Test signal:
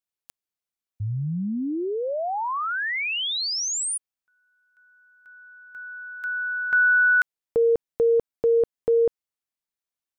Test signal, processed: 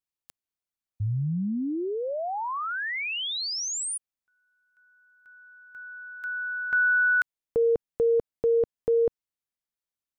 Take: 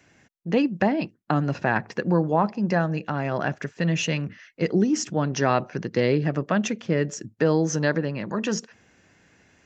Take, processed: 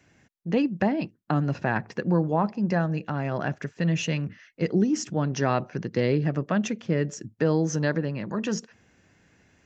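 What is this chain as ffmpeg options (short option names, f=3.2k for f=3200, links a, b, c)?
-af "lowshelf=f=230:g=5.5,volume=-4dB"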